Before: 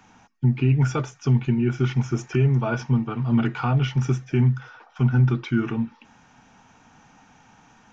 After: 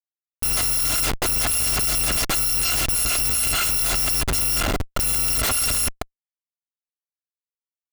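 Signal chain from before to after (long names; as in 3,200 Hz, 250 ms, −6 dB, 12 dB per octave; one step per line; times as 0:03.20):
samples in bit-reversed order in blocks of 256 samples
comparator with hysteresis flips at −39.5 dBFS
level +2 dB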